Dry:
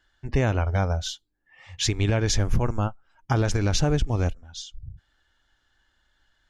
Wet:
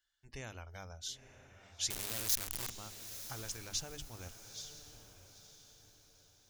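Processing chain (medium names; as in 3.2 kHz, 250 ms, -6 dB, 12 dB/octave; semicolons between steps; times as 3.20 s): 1.90–2.70 s: one-bit comparator; pre-emphasis filter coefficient 0.9; hum notches 50/100/150/200/250/300 Hz; on a send: echo that smears into a reverb 928 ms, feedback 40%, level -11 dB; on the sum: trim -6 dB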